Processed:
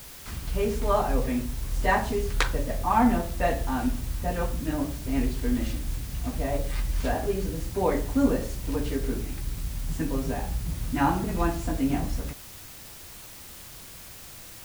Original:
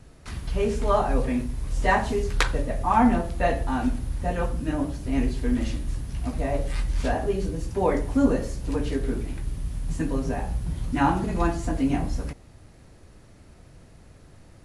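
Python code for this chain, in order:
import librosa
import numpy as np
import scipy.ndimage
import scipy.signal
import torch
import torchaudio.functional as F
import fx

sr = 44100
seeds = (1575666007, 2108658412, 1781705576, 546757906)

y = fx.dmg_noise_colour(x, sr, seeds[0], colour='white', level_db=-43.0)
y = F.gain(torch.from_numpy(y), -2.0).numpy()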